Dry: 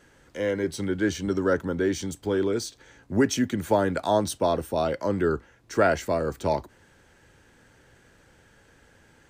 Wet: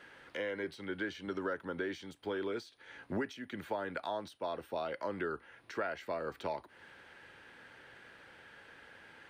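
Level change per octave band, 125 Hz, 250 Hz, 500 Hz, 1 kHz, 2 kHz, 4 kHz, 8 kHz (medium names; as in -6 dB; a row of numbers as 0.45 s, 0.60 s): -18.5 dB, -15.5 dB, -13.5 dB, -12.0 dB, -8.0 dB, -11.5 dB, under -20 dB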